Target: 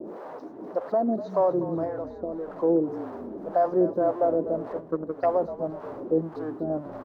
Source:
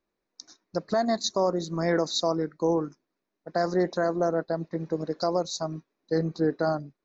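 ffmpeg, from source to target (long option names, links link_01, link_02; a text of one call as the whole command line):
ffmpeg -i in.wav -filter_complex "[0:a]aeval=exprs='val(0)+0.5*0.0355*sgn(val(0))':channel_layout=same,acrossover=split=510[link_01][link_02];[link_01]aeval=exprs='val(0)*(1-1/2+1/2*cos(2*PI*1.8*n/s))':channel_layout=same[link_03];[link_02]aeval=exprs='val(0)*(1-1/2-1/2*cos(2*PI*1.8*n/s))':channel_layout=same[link_04];[link_03][link_04]amix=inputs=2:normalize=0,acrossover=split=4300[link_05][link_06];[link_06]acompressor=threshold=-53dB:ratio=4:attack=1:release=60[link_07];[link_05][link_07]amix=inputs=2:normalize=0,highpass=300,asettb=1/sr,asplit=3[link_08][link_09][link_10];[link_08]atrim=end=1.844[link_11];[link_09]atrim=start=1.84:end=2.53,asetpts=PTS-STARTPTS,afade=type=in:duration=0.004:curve=qsin,afade=type=out:start_time=0.686:duration=0.004:curve=qsin,acompressor=threshold=-36dB:ratio=5[link_12];[link_10]atrim=start=2.526[link_13];[link_11][link_12]acrossfade=duration=0.004:curve1=hsin:curve2=qsin[link_14];[link_14][link_13]acrossfade=duration=0.004:curve1=qsin:curve2=hsin,asettb=1/sr,asplit=3[link_15][link_16][link_17];[link_15]atrim=end=6.184[link_18];[link_16]atrim=start=6.18:end=6.7,asetpts=PTS-STARTPTS,afade=type=in:duration=0.004:curve=qsin,afade=type=out:start_time=0.516:duration=0.004:curve=qsin,equalizer=frequency=500:width_type=o:width=0.61:gain=-12.5[link_19];[link_17]atrim=start=6.696[link_20];[link_18][link_19]acrossfade=duration=0.004:curve1=hsin:curve2=qsin[link_21];[link_21][link_20]acrossfade=duration=0.004:curve1=qsin:curve2=hsin,asplit=6[link_22][link_23][link_24][link_25][link_26][link_27];[link_23]adelay=246,afreqshift=-45,volume=-13.5dB[link_28];[link_24]adelay=492,afreqshift=-90,volume=-19dB[link_29];[link_25]adelay=738,afreqshift=-135,volume=-24.5dB[link_30];[link_26]adelay=984,afreqshift=-180,volume=-30dB[link_31];[link_27]adelay=1230,afreqshift=-225,volume=-35.6dB[link_32];[link_22][link_28][link_29][link_30][link_31][link_32]amix=inputs=6:normalize=0,agate=range=-33dB:threshold=-49dB:ratio=3:detection=peak,firequalizer=gain_entry='entry(620,0);entry(2300,-27);entry(3700,-29)':delay=0.05:min_phase=1,asplit=3[link_33][link_34][link_35];[link_33]afade=type=out:start_time=4.79:duration=0.02[link_36];[link_34]aeval=exprs='0.0944*(cos(1*acos(clip(val(0)/0.0944,-1,1)))-cos(1*PI/2))+0.0188*(cos(3*acos(clip(val(0)/0.0944,-1,1)))-cos(3*PI/2))':channel_layout=same,afade=type=in:start_time=4.79:duration=0.02,afade=type=out:start_time=5.24:duration=0.02[link_37];[link_35]afade=type=in:start_time=5.24:duration=0.02[link_38];[link_36][link_37][link_38]amix=inputs=3:normalize=0,volume=7dB" out.wav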